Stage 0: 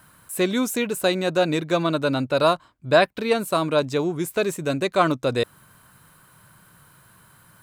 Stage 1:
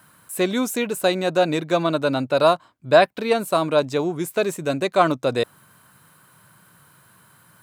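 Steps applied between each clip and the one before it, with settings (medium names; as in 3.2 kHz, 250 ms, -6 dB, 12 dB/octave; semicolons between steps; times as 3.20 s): dynamic bell 720 Hz, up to +4 dB, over -35 dBFS, Q 1.9; high-pass 110 Hz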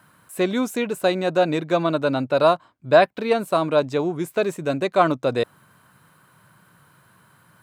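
treble shelf 4.6 kHz -8.5 dB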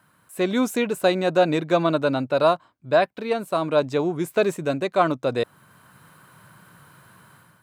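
level rider gain up to 10 dB; trim -5.5 dB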